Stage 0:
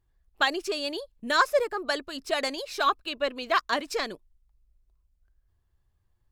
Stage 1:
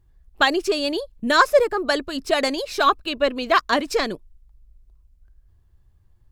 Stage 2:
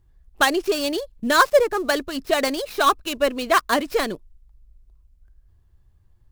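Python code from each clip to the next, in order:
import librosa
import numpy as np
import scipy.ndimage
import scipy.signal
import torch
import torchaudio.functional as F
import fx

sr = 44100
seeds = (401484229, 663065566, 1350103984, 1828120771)

y1 = fx.low_shelf(x, sr, hz=370.0, db=8.5)
y1 = F.gain(torch.from_numpy(y1), 5.5).numpy()
y2 = fx.dead_time(y1, sr, dead_ms=0.068)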